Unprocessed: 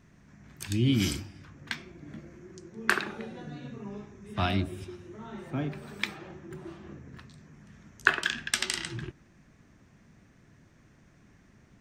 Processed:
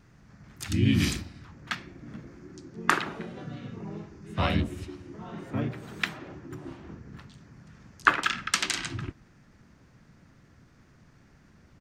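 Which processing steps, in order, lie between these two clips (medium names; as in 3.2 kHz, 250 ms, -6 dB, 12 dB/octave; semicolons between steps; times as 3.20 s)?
wow and flutter 16 cents; harmony voices -4 st 0 dB; trim -1 dB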